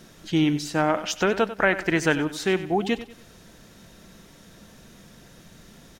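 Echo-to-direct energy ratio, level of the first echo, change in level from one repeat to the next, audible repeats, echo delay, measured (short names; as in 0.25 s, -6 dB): -13.5 dB, -14.0 dB, -9.0 dB, 3, 95 ms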